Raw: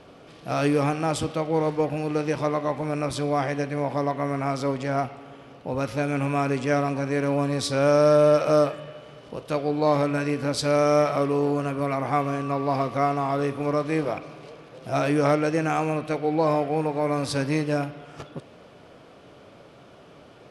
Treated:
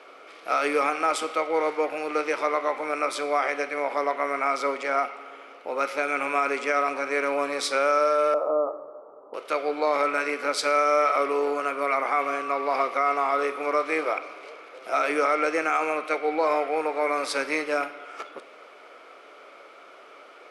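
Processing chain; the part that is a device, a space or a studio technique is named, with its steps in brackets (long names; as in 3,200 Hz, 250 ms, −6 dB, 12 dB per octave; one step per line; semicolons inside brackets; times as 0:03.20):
laptop speaker (high-pass filter 370 Hz 24 dB per octave; parametric band 1,300 Hz +11.5 dB 0.3 octaves; parametric band 2,200 Hz +11 dB 0.29 octaves; brickwall limiter −13.5 dBFS, peak gain reduction 7 dB)
0:08.34–0:09.34: Butterworth low-pass 1,100 Hz 48 dB per octave
four-comb reverb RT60 0.66 s, combs from 29 ms, DRR 17 dB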